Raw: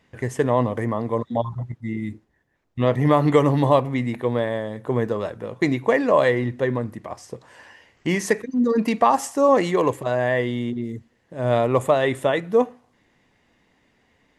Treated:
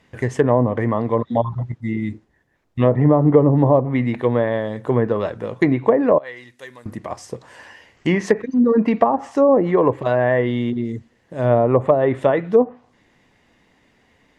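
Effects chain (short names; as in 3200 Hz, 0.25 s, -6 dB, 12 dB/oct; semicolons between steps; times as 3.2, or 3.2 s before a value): 6.18–6.86 pre-emphasis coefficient 0.97; treble ducked by the level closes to 640 Hz, closed at -13.5 dBFS; gain +4.5 dB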